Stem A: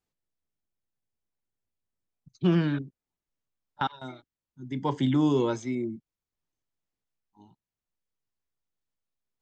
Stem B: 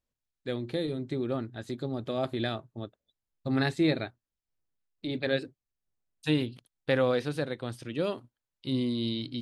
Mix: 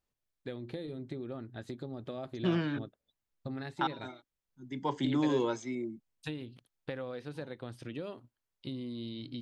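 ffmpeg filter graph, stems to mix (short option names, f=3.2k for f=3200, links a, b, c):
-filter_complex "[0:a]lowshelf=f=170:g=-11.5,volume=-3dB[a];[1:a]highshelf=f=4.1k:g=-6.5,acompressor=threshold=-37dB:ratio=6,volume=-0.5dB[b];[a][b]amix=inputs=2:normalize=0"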